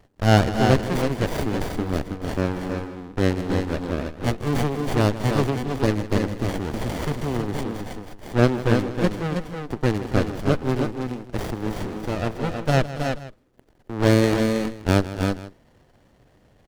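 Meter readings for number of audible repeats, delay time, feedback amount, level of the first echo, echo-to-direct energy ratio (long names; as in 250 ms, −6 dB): 4, 158 ms, repeats not evenly spaced, −15.0 dB, −4.0 dB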